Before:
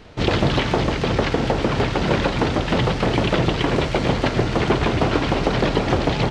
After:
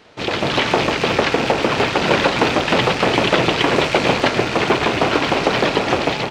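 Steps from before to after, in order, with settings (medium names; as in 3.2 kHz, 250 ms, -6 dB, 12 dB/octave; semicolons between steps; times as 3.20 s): rattle on loud lows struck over -24 dBFS, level -20 dBFS; high-pass 430 Hz 6 dB/octave; level rider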